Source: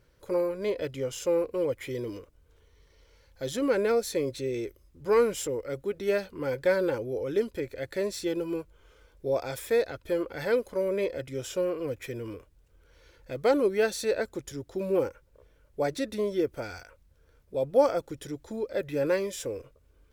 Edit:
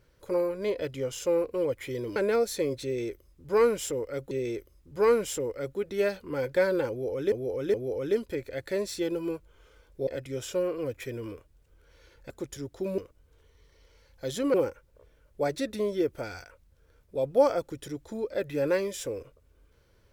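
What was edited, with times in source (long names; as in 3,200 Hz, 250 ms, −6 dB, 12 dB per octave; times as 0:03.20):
0:02.16–0:03.72: move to 0:14.93
0:04.40–0:05.87: repeat, 2 plays
0:06.99–0:07.41: repeat, 3 plays
0:09.32–0:11.09: remove
0:13.32–0:14.25: remove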